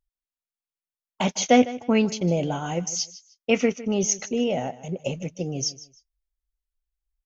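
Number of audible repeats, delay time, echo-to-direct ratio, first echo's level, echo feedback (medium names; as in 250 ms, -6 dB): 2, 154 ms, -17.0 dB, -17.0 dB, 24%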